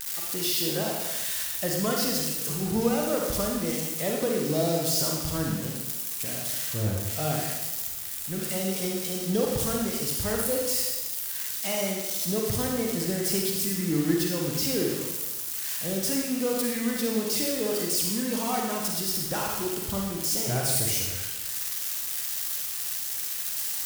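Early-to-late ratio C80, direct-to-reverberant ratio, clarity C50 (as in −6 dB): 3.5 dB, −1.0 dB, 0.5 dB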